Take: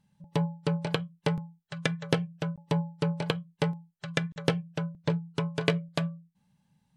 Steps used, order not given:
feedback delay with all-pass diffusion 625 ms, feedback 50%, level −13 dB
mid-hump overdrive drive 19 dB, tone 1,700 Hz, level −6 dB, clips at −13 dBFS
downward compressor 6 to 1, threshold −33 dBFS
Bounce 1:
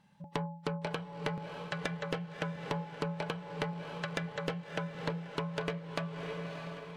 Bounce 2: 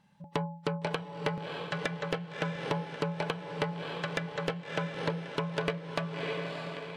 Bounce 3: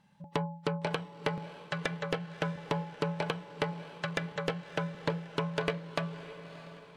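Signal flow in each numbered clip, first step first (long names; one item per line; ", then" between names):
mid-hump overdrive, then feedback delay with all-pass diffusion, then downward compressor
feedback delay with all-pass diffusion, then downward compressor, then mid-hump overdrive
downward compressor, then mid-hump overdrive, then feedback delay with all-pass diffusion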